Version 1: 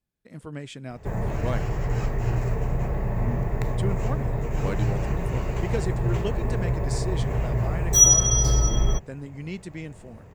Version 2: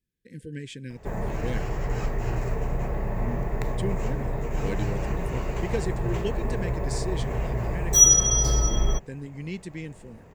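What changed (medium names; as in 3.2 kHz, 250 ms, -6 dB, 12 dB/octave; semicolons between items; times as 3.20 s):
speech: add brick-wall FIR band-stop 540–1500 Hz; background: add peaking EQ 100 Hz -7 dB 1.1 oct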